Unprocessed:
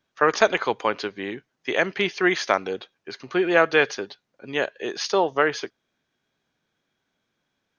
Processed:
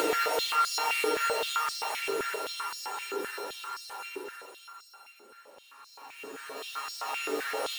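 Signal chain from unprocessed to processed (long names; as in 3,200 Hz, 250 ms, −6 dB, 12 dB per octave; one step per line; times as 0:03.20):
samples sorted by size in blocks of 32 samples
extreme stretch with random phases 9.5×, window 0.50 s, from 0:03.72
downward compressor 2 to 1, threshold −32 dBFS, peak gain reduction 10 dB
high-pass on a step sequencer 7.7 Hz 380–4,900 Hz
level −3.5 dB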